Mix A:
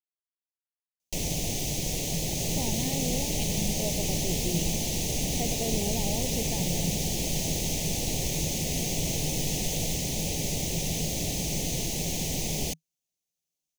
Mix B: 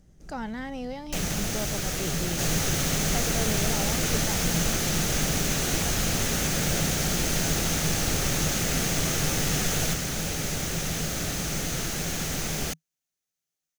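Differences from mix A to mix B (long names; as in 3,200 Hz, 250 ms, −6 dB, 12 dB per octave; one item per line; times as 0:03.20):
speech: entry −2.25 s
second sound +8.5 dB
master: remove Butterworth band-reject 1,400 Hz, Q 0.92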